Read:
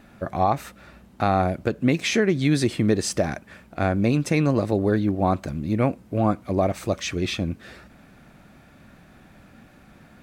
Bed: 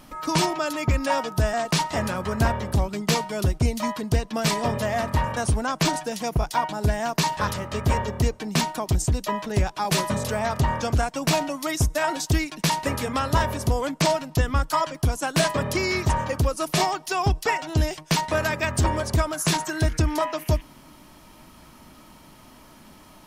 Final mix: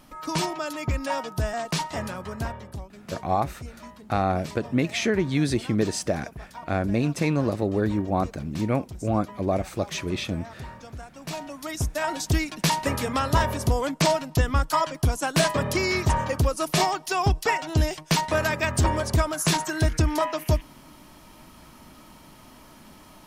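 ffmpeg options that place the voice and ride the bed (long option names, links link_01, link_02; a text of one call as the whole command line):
ffmpeg -i stem1.wav -i stem2.wav -filter_complex "[0:a]adelay=2900,volume=-3dB[link_01];[1:a]volume=13dB,afade=type=out:start_time=1.89:duration=1:silence=0.223872,afade=type=in:start_time=11.14:duration=1.39:silence=0.133352[link_02];[link_01][link_02]amix=inputs=2:normalize=0" out.wav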